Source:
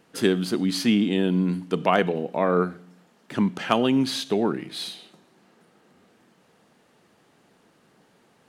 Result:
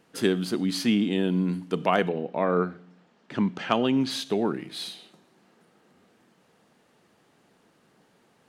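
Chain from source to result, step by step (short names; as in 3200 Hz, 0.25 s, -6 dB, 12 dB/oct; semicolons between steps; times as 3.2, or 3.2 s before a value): 2.08–4.09 LPF 3800 Hz -> 6600 Hz 12 dB/oct; gain -2.5 dB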